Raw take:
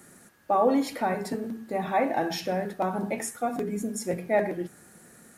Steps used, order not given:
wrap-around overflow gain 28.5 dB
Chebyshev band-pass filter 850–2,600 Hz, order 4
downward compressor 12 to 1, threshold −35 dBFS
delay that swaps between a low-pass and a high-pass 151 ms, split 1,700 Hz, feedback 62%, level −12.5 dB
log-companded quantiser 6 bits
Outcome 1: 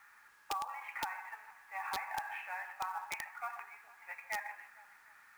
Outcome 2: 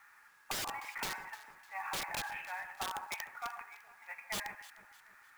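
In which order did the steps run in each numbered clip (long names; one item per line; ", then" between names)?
Chebyshev band-pass filter, then downward compressor, then log-companded quantiser, then delay that swaps between a low-pass and a high-pass, then wrap-around overflow
Chebyshev band-pass filter, then wrap-around overflow, then downward compressor, then delay that swaps between a low-pass and a high-pass, then log-companded quantiser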